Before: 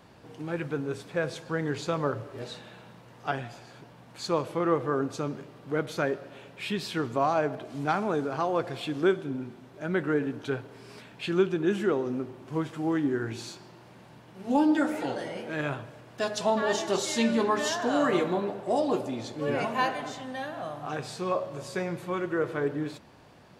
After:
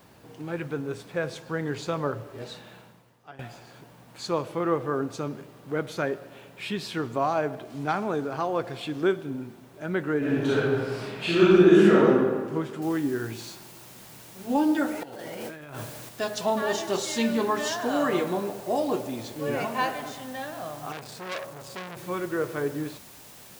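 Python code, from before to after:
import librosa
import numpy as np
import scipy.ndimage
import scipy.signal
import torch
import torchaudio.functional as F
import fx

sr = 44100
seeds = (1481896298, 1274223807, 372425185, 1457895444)

y = fx.reverb_throw(x, sr, start_s=10.18, length_s=1.88, rt60_s=1.6, drr_db=-9.5)
y = fx.noise_floor_step(y, sr, seeds[0], at_s=12.82, before_db=-65, after_db=-49, tilt_db=0.0)
y = fx.over_compress(y, sr, threshold_db=-39.0, ratio=-1.0, at=(15.03, 16.09))
y = fx.transformer_sat(y, sr, knee_hz=3500.0, at=(20.92, 21.97))
y = fx.edit(y, sr, fx.fade_out_to(start_s=2.77, length_s=0.62, curve='qua', floor_db=-17.0), tone=tone)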